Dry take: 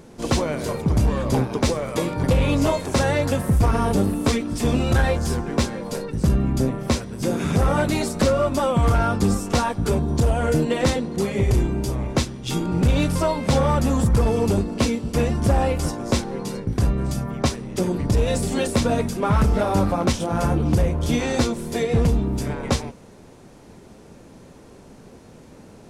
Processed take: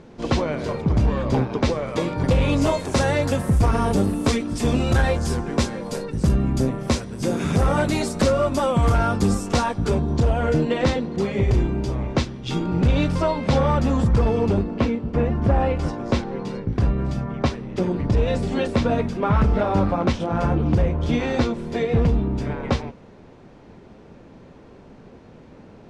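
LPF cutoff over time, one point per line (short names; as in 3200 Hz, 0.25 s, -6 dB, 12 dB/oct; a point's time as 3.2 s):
1.7 s 4200 Hz
2.77 s 10000 Hz
9.37 s 10000 Hz
10.29 s 4400 Hz
14.16 s 4400 Hz
15.18 s 1700 Hz
15.9 s 3400 Hz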